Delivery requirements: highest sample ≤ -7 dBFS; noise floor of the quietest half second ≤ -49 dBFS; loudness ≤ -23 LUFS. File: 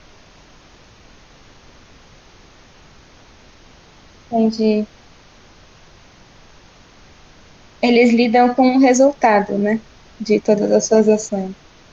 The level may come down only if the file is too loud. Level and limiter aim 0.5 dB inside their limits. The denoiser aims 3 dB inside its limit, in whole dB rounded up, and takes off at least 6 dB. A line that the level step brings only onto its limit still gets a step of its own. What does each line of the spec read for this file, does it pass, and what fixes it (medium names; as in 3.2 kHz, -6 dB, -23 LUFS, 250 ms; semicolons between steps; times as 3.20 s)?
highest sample -2.5 dBFS: fail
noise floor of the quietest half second -46 dBFS: fail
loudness -15.5 LUFS: fail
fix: trim -8 dB